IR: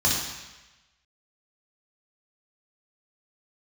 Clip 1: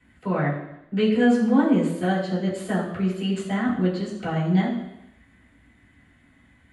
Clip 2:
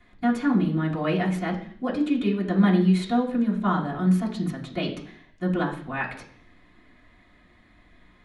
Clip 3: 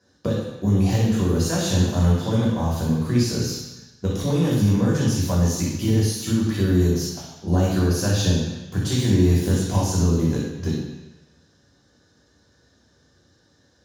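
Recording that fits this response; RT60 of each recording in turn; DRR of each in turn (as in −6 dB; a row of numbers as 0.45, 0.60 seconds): 3; 0.85, 0.55, 1.1 seconds; −8.0, −5.0, −5.0 decibels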